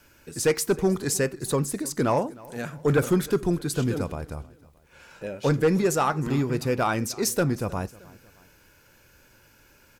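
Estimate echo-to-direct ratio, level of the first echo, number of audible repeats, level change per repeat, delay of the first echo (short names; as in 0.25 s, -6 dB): -21.0 dB, -22.0 dB, 2, -6.0 dB, 0.311 s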